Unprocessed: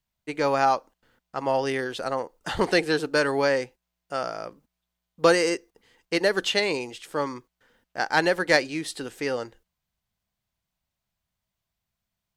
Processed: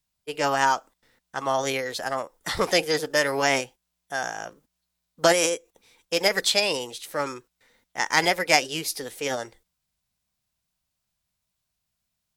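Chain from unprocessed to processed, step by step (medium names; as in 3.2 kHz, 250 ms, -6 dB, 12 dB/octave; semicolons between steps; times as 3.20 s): formant shift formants +3 st; treble shelf 3.4 kHz +8.5 dB; trim -1 dB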